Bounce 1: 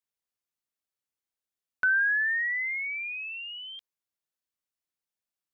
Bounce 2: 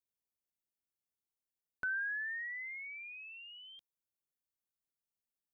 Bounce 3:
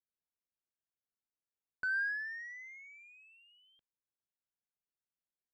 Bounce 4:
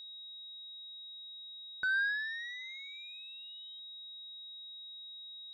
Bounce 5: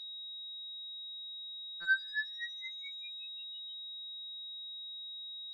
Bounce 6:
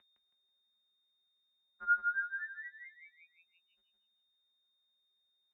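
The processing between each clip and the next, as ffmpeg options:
-af "equalizer=f=2200:w=0.33:g=-11.5,volume=0.841"
-af "adynamicsmooth=sensitivity=6.5:basefreq=1600,equalizer=f=1600:w=6:g=8,volume=0.668"
-af "aeval=exprs='val(0)+0.00398*sin(2*PI*3800*n/s)':c=same,volume=1.33"
-af "afftfilt=real='re*2.83*eq(mod(b,8),0)':imag='im*2.83*eq(mod(b,8),0)':win_size=2048:overlap=0.75"
-filter_complex "[0:a]asplit=2[s0][s1];[s1]aecho=0:1:162|324|486|648:0.596|0.203|0.0689|0.0234[s2];[s0][s2]amix=inputs=2:normalize=0,highpass=f=190:t=q:w=0.5412,highpass=f=190:t=q:w=1.307,lowpass=f=2200:t=q:w=0.5176,lowpass=f=2200:t=q:w=0.7071,lowpass=f=2200:t=q:w=1.932,afreqshift=-130"

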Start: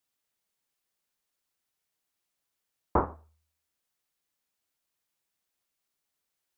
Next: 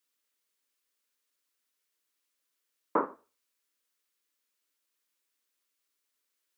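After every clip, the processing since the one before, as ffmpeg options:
-af "highpass=f=260:w=0.5412,highpass=f=260:w=1.3066,equalizer=f=750:w=3:g=-11.5,bandreject=f=360:w=12,volume=1.26"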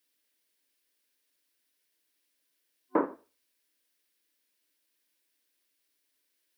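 -filter_complex "[0:a]superequalizer=6b=1.58:9b=0.708:10b=0.447:15b=0.631,asplit=2[s0][s1];[s1]alimiter=level_in=1.06:limit=0.0631:level=0:latency=1:release=194,volume=0.944,volume=0.708[s2];[s0][s2]amix=inputs=2:normalize=0"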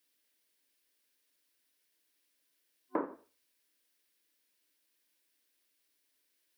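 -af "acompressor=threshold=0.0224:ratio=2.5"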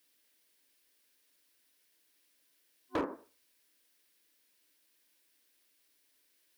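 -af "asoftclip=type=hard:threshold=0.0224,volume=1.78"

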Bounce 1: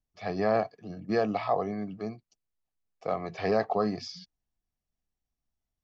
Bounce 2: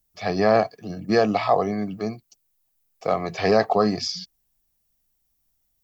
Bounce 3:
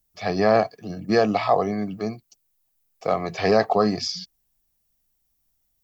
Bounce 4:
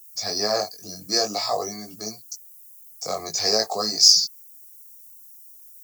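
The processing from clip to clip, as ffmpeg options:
-af "aemphasis=mode=production:type=50fm,volume=2.51"
-af anull
-filter_complex "[0:a]flanger=delay=18:depth=2.8:speed=0.52,acrossover=split=280|630[s0][s1][s2];[s0]acompressor=threshold=0.01:ratio=6[s3];[s3][s1][s2]amix=inputs=3:normalize=0,aexciter=amount=14.2:drive=9.4:freq=4800,volume=0.668"

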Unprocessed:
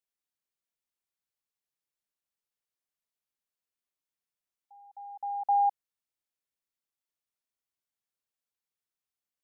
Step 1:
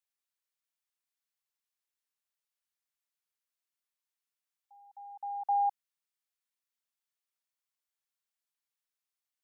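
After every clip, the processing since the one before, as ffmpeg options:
-af "highpass=860"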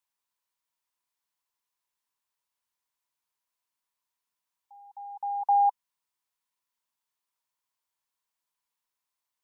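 -af "equalizer=f=980:t=o:w=0.3:g=13,volume=1.41"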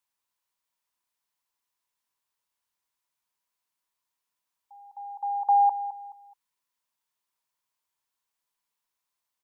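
-af "aecho=1:1:213|426|639:0.224|0.0716|0.0229,volume=1.19"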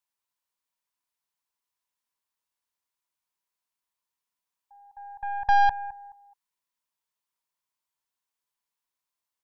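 -af "aeval=exprs='0.188*(cos(1*acos(clip(val(0)/0.188,-1,1)))-cos(1*PI/2))+0.0668*(cos(2*acos(clip(val(0)/0.188,-1,1)))-cos(2*PI/2))+0.0106*(cos(3*acos(clip(val(0)/0.188,-1,1)))-cos(3*PI/2))+0.00944*(cos(6*acos(clip(val(0)/0.188,-1,1)))-cos(6*PI/2))+0.00473*(cos(7*acos(clip(val(0)/0.188,-1,1)))-cos(7*PI/2))':c=same"

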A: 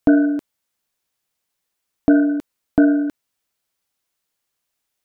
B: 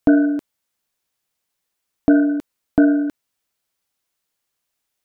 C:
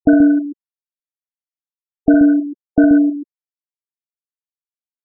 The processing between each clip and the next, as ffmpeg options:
-af anull
-af "afftfilt=real='re*gte(hypot(re,im),0.224)':imag='im*gte(hypot(re,im),0.224)':win_size=1024:overlap=0.75,aecho=1:1:61.22|131.2:0.316|0.501,volume=1.33"

